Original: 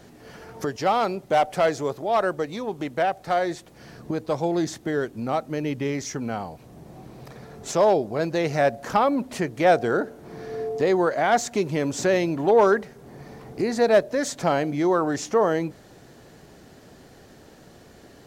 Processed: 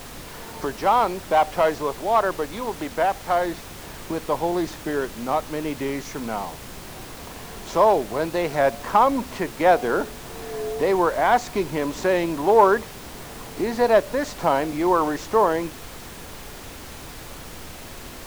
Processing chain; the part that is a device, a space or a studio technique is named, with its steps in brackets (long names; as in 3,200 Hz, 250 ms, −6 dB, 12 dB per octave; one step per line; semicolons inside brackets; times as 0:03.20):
horn gramophone (band-pass filter 190–4,400 Hz; parametric band 990 Hz +9.5 dB 0.41 octaves; tape wow and flutter; pink noise bed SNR 15 dB)